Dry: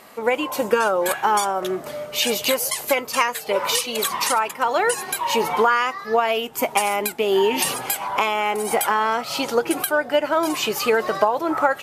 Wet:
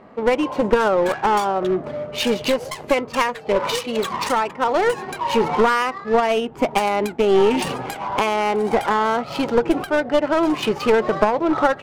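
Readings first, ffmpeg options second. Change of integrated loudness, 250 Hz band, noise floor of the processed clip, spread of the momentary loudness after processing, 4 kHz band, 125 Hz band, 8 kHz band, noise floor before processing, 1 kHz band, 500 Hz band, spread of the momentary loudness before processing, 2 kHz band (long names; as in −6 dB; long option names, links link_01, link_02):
+1.0 dB, +6.0 dB, −38 dBFS, 6 LU, −3.0 dB, +8.5 dB, −10.0 dB, −37 dBFS, +0.5 dB, +3.0 dB, 4 LU, −1.5 dB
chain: -af "lowshelf=frequency=480:gain=10.5,aeval=exprs='clip(val(0),-1,0.178)':channel_layout=same,adynamicsmooth=sensitivity=2:basefreq=1600,volume=-1dB"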